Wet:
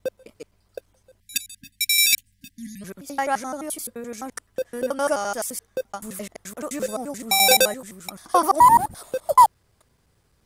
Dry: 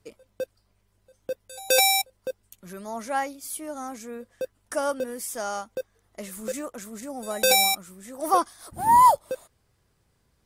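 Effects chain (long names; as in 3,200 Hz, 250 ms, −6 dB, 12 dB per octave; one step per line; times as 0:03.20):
slices reordered back to front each 86 ms, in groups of 5
time-frequency box erased 0:01.20–0:02.82, 280–1,600 Hz
level +4 dB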